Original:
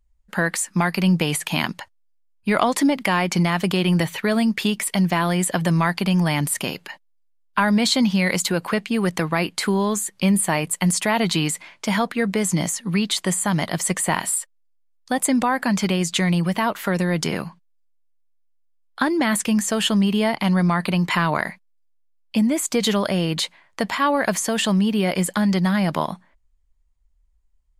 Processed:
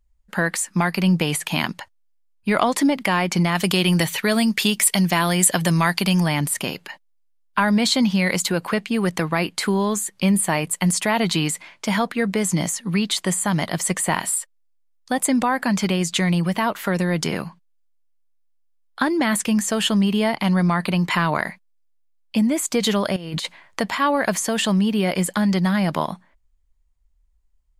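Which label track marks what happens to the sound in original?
3.550000	6.260000	high shelf 2900 Hz +9.5 dB
23.160000	23.800000	negative-ratio compressor -27 dBFS, ratio -0.5

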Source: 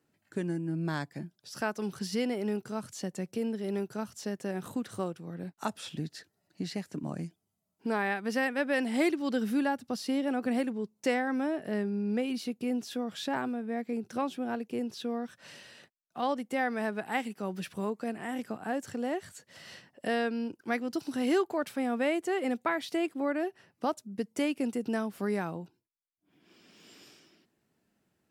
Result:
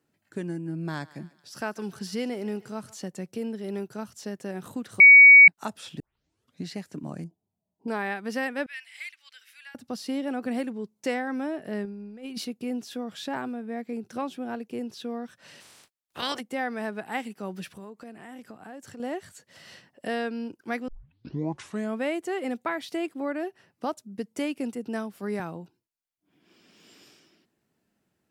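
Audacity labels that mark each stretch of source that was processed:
0.510000	3.080000	thinning echo 0.146 s, feedback 54%, high-pass 610 Hz, level -18.5 dB
5.000000	5.480000	bleep 2250 Hz -7.5 dBFS
6.000000	6.000000	tape start 0.65 s
7.240000	7.880000	EQ curve 970 Hz 0 dB, 1500 Hz -30 dB, 7200 Hz -15 dB
8.660000	9.750000	ladder high-pass 1800 Hz, resonance 45%
11.850000	12.450000	negative-ratio compressor -36 dBFS, ratio -0.5
15.600000	16.390000	spectral limiter ceiling under each frame's peak by 26 dB
17.760000	19.000000	compressor 2.5:1, threshold -43 dBFS
20.880000	20.880000	tape start 1.12 s
24.750000	25.400000	three-band expander depth 70%

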